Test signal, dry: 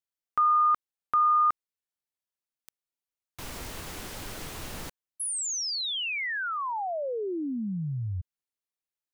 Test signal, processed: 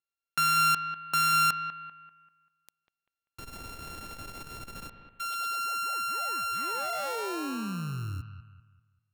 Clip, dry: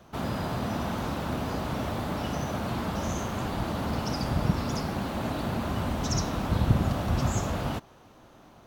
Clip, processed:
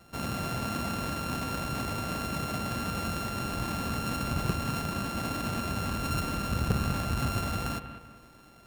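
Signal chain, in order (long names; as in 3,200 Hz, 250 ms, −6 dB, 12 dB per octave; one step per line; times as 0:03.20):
samples sorted by size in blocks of 32 samples
bucket-brigade delay 195 ms, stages 4,096, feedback 37%, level −11 dB
saturating transformer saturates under 260 Hz
level −2.5 dB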